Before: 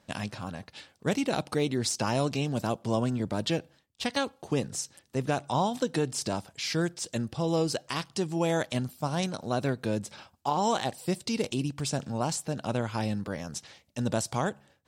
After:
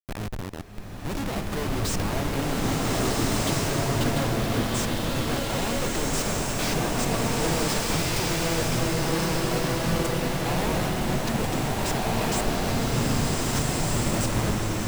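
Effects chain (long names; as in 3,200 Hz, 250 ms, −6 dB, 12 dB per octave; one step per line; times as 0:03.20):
dynamic equaliser 7,800 Hz, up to +5 dB, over −50 dBFS, Q 1.8
comparator with hysteresis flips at −33.5 dBFS
slow-attack reverb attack 1,680 ms, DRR −6.5 dB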